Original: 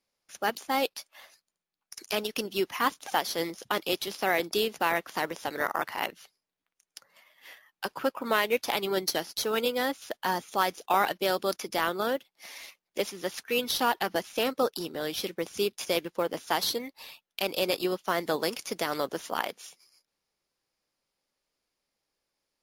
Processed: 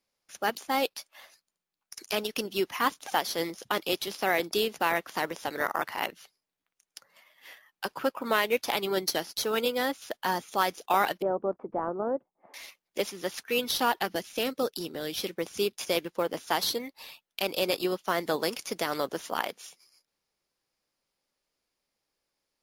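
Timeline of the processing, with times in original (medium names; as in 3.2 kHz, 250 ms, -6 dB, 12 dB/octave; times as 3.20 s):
11.22–12.54 s: low-pass 1 kHz 24 dB/octave
14.05–15.17 s: dynamic bell 1 kHz, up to -7 dB, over -42 dBFS, Q 0.93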